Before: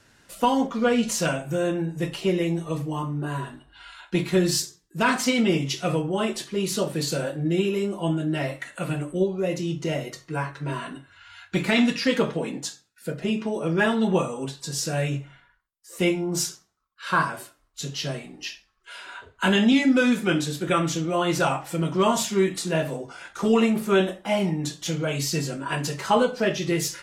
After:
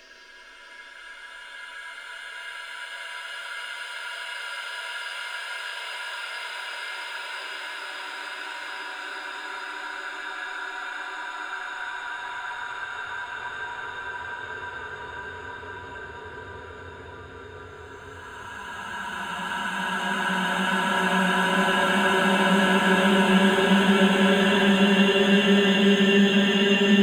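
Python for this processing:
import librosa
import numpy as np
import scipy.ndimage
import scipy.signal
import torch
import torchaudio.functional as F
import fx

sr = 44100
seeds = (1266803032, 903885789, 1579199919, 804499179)

p1 = scipy.signal.medfilt(x, 3)
p2 = fx.dereverb_blind(p1, sr, rt60_s=1.6)
p3 = p2 + fx.echo_banded(p2, sr, ms=194, feedback_pct=41, hz=500.0, wet_db=-17.5, dry=0)
p4 = fx.rev_schroeder(p3, sr, rt60_s=0.63, comb_ms=26, drr_db=9.5)
p5 = fx.paulstretch(p4, sr, seeds[0], factor=34.0, window_s=0.25, from_s=18.79)
p6 = fx.band_squash(p5, sr, depth_pct=40)
y = F.gain(torch.from_numpy(p6), 2.0).numpy()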